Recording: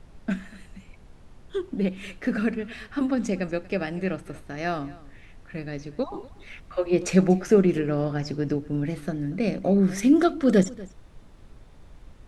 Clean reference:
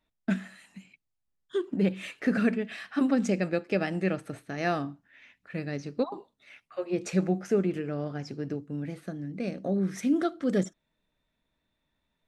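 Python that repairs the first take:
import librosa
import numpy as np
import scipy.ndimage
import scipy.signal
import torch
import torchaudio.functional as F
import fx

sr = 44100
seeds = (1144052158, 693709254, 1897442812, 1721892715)

y = fx.noise_reduce(x, sr, print_start_s=11.27, print_end_s=11.77, reduce_db=30.0)
y = fx.fix_echo_inverse(y, sr, delay_ms=239, level_db=-20.5)
y = fx.fix_level(y, sr, at_s=6.14, step_db=-7.5)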